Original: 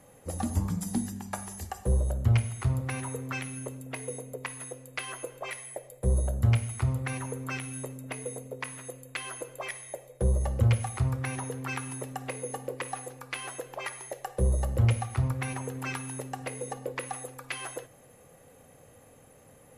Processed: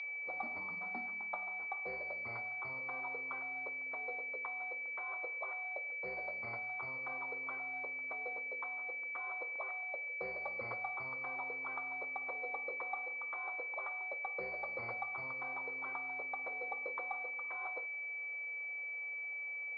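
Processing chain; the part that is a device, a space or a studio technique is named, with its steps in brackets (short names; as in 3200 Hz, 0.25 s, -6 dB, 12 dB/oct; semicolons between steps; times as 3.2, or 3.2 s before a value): toy sound module (decimation joined by straight lines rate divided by 4×; pulse-width modulation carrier 2300 Hz; speaker cabinet 780–4800 Hz, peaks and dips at 1200 Hz +6 dB, 1700 Hz -7 dB, 2600 Hz -9 dB, 3800 Hz +3 dB); gain -2 dB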